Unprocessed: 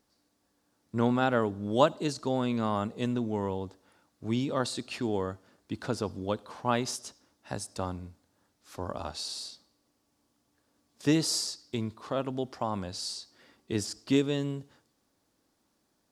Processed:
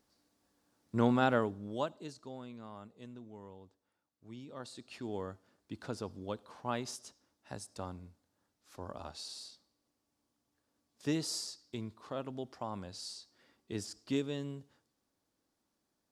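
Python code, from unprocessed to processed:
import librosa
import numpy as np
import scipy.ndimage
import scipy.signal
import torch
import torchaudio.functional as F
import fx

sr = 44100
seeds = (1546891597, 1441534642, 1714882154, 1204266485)

y = fx.gain(x, sr, db=fx.line((1.31, -2.0), (1.8, -12.5), (2.62, -19.5), (4.36, -19.5), (5.19, -8.5)))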